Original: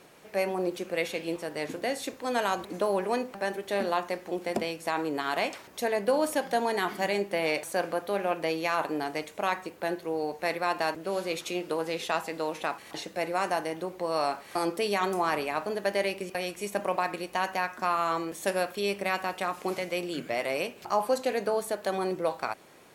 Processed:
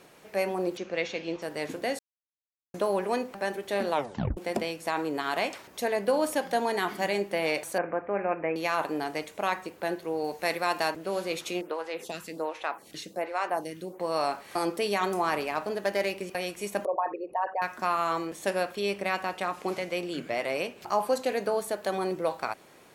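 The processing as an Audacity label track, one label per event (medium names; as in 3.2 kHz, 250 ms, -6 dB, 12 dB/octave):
0.770000	1.420000	elliptic low-pass 6.4 kHz, stop band 60 dB
1.990000	2.740000	mute
3.910000	3.910000	tape stop 0.46 s
7.780000	8.560000	steep low-pass 2.5 kHz 72 dB/octave
10.240000	10.880000	treble shelf 3.5 kHz +6.5 dB
11.610000	14.000000	lamp-driven phase shifter 1.3 Hz
15.400000	16.350000	self-modulated delay depth 0.052 ms
16.850000	17.620000	resonances exaggerated exponent 3
18.270000	20.810000	treble shelf 10 kHz -8 dB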